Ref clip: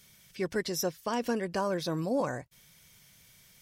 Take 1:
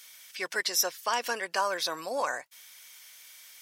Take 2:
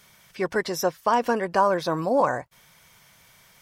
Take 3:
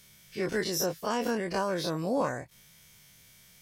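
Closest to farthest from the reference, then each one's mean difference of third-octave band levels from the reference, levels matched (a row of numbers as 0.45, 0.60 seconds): 3, 2, 1; 2.5, 4.0, 8.5 decibels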